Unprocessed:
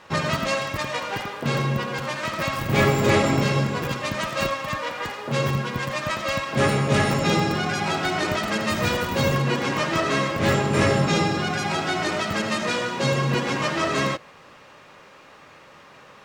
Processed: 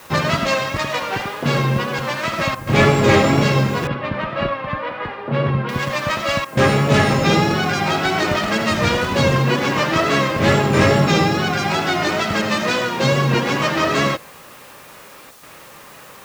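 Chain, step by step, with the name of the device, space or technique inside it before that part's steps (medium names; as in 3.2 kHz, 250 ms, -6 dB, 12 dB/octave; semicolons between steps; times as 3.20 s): worn cassette (low-pass 7.2 kHz 12 dB/octave; wow and flutter; level dips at 2.55/6.45/15.31 s, 120 ms -9 dB; white noise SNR 28 dB); 3.87–5.69 s: distance through air 420 m; trim +5.5 dB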